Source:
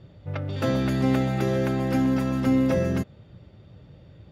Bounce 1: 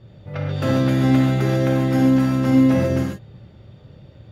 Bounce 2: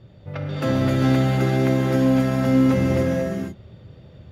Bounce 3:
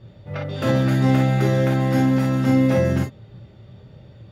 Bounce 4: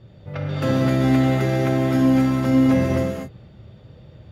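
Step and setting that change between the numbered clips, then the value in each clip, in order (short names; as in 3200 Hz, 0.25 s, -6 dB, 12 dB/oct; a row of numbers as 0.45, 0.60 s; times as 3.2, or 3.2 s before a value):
non-linear reverb, gate: 170, 520, 80, 270 ms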